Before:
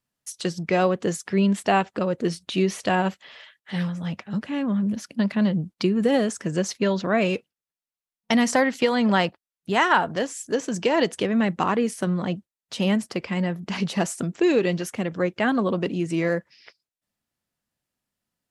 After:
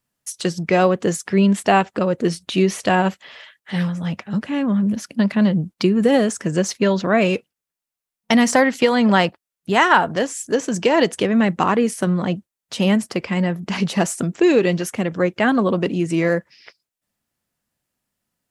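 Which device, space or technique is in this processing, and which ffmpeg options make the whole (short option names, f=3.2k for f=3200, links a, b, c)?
exciter from parts: -filter_complex "[0:a]asplit=2[a][b];[b]highpass=3.5k,asoftclip=type=tanh:threshold=-30dB,highpass=3.3k,volume=-11dB[c];[a][c]amix=inputs=2:normalize=0,volume=5dB"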